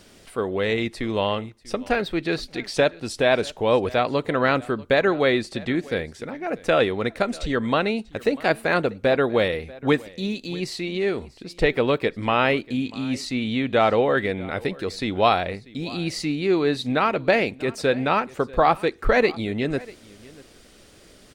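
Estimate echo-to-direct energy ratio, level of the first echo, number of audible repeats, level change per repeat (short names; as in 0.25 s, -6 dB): -21.5 dB, -21.5 dB, 1, no steady repeat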